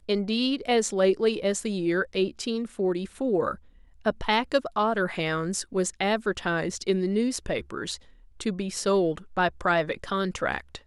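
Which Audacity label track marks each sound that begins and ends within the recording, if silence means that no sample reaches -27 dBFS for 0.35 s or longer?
4.060000	7.940000	sound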